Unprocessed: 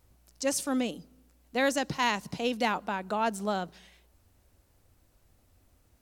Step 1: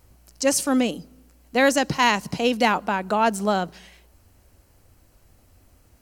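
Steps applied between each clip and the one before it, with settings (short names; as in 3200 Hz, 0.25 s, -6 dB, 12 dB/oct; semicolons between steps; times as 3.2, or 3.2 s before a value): notch 3600 Hz, Q 12; gain +8.5 dB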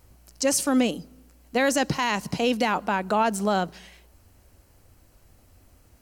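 limiter -12 dBFS, peak gain reduction 8 dB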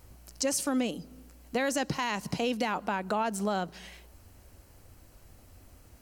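compressor 2:1, threshold -34 dBFS, peak gain reduction 9.5 dB; gain +1.5 dB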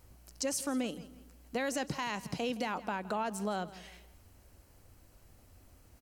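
feedback echo 0.166 s, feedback 32%, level -18 dB; gain -5 dB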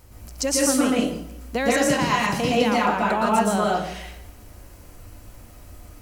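plate-style reverb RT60 0.54 s, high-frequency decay 0.65×, pre-delay 0.105 s, DRR -5 dB; gain +9 dB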